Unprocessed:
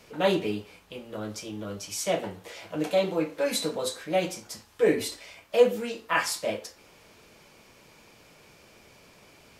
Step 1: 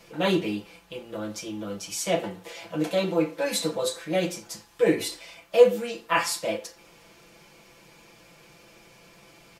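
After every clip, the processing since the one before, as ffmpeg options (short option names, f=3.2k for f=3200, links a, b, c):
-af "aecho=1:1:5.9:0.68"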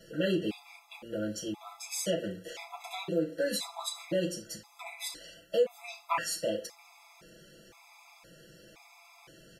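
-af "acompressor=threshold=-26dB:ratio=3,afftfilt=real='re*gt(sin(2*PI*0.97*pts/sr)*(1-2*mod(floor(b*sr/1024/670),2)),0)':imag='im*gt(sin(2*PI*0.97*pts/sr)*(1-2*mod(floor(b*sr/1024/670),2)),0)':win_size=1024:overlap=0.75"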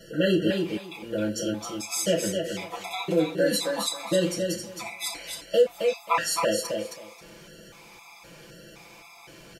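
-af "aecho=1:1:267|534|801:0.562|0.0956|0.0163,volume=6.5dB"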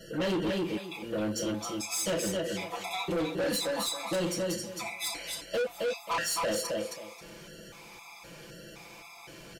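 -af "asoftclip=type=tanh:threshold=-26.5dB"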